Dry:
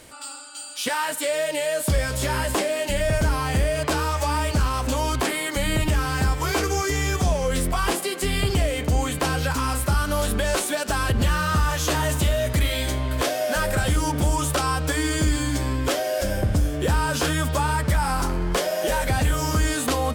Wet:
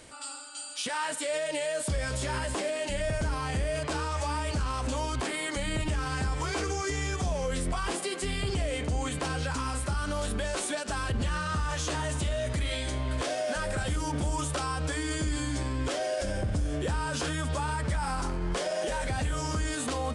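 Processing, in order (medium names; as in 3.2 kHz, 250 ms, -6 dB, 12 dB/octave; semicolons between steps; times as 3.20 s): peak limiter -19 dBFS, peak gain reduction 7.5 dB; resampled via 22.05 kHz; trim -3.5 dB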